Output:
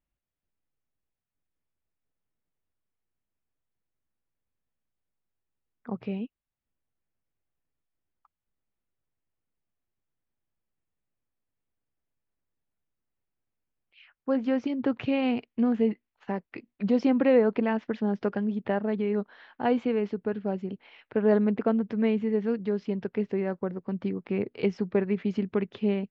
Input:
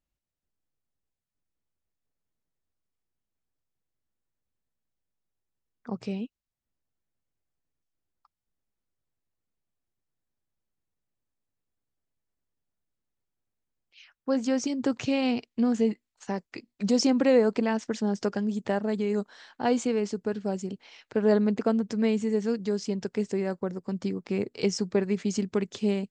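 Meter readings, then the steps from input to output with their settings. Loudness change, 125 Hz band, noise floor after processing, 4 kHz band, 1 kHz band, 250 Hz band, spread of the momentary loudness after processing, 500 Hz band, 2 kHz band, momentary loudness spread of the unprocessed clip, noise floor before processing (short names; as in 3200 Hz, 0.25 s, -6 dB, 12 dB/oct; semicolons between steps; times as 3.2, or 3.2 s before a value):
0.0 dB, 0.0 dB, under -85 dBFS, -8.0 dB, 0.0 dB, 0.0 dB, 12 LU, 0.0 dB, -0.5 dB, 12 LU, under -85 dBFS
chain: LPF 3000 Hz 24 dB/oct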